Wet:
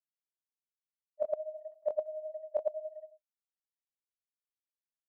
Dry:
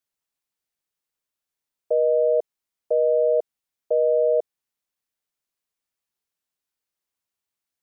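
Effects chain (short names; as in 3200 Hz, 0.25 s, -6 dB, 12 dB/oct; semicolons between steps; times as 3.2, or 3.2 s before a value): bit-crush 10-bit; small resonant body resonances 350/580 Hz, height 16 dB, ringing for 35 ms; grains 74 ms, grains 7.6/s, pitch spread up and down by 0 st; non-linear reverb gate 0.32 s rising, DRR 10.5 dB; FFT band-reject 280–610 Hz; limiter -13 dBFS, peak gain reduction 6.5 dB; flipped gate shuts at -25 dBFS, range -32 dB; loudspeakers at several distances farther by 12 m -5 dB, 58 m -1 dB; gate -53 dBFS, range -9 dB; tilt shelf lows -6 dB, about 680 Hz; time stretch by phase-locked vocoder 0.65×; gain +8.5 dB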